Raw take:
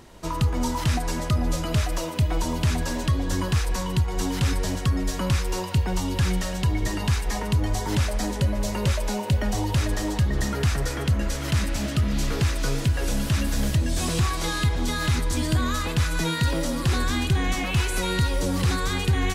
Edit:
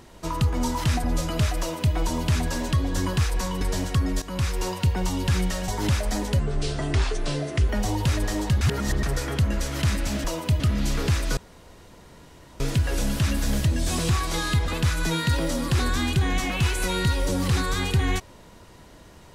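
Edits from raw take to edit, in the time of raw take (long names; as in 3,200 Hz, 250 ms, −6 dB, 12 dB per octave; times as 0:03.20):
0:01.04–0:01.39: remove
0:01.94–0:02.30: duplicate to 0:11.93
0:03.96–0:04.52: remove
0:05.13–0:05.56: fade in equal-power, from −13.5 dB
0:06.59–0:07.76: remove
0:08.47–0:09.38: play speed 70%
0:10.30–0:10.72: reverse
0:12.70: splice in room tone 1.23 s
0:14.78–0:15.82: remove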